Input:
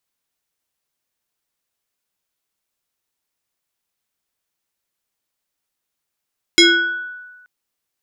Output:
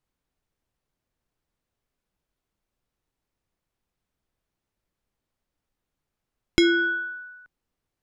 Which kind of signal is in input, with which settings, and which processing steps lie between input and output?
FM tone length 0.88 s, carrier 1.48 kHz, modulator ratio 1.23, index 2.9, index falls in 0.83 s exponential, decay 1.29 s, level -5 dB
tilt EQ -3.5 dB/octave; compression 4:1, threshold -17 dBFS

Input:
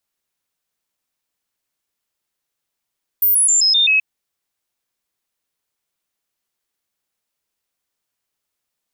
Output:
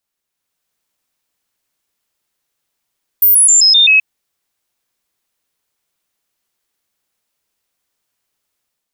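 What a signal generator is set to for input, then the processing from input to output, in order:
stepped sine 14.5 kHz down, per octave 2, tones 6, 0.13 s, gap 0.00 s -11 dBFS
level rider gain up to 6 dB

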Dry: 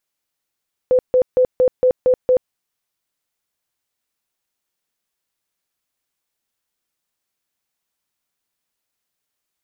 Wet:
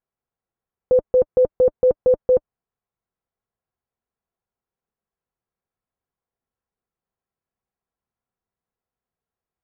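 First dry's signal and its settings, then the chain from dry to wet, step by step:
tone bursts 507 Hz, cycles 40, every 0.23 s, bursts 7, -10 dBFS
low-pass 1.1 kHz 12 dB/octave; bass shelf 76 Hz +8 dB; comb of notches 300 Hz

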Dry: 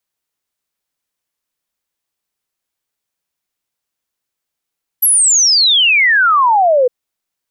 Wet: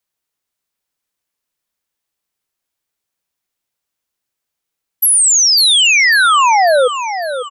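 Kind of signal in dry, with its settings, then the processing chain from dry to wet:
log sweep 12 kHz -> 480 Hz 1.86 s -7.5 dBFS
feedback delay 549 ms, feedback 45%, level -10 dB

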